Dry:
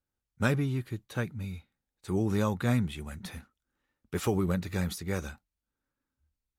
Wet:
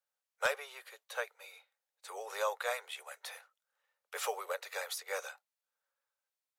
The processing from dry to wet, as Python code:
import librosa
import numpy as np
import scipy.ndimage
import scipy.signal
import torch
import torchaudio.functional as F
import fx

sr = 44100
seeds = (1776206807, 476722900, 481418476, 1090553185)

y = scipy.signal.sosfilt(scipy.signal.butter(12, 480.0, 'highpass', fs=sr, output='sos'), x)
y = 10.0 ** (-20.5 / 20.0) * (np.abs((y / 10.0 ** (-20.5 / 20.0) + 3.0) % 4.0 - 2.0) - 1.0)